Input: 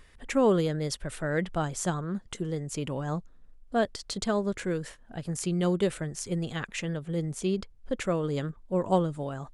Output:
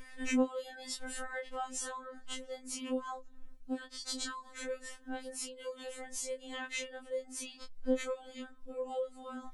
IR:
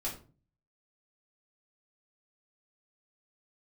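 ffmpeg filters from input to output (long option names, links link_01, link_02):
-af "afftfilt=real='re':imag='-im':win_size=2048:overlap=0.75,acompressor=threshold=-45dB:ratio=4,afftfilt=real='re*3.46*eq(mod(b,12),0)':imag='im*3.46*eq(mod(b,12),0)':win_size=2048:overlap=0.75,volume=9dB"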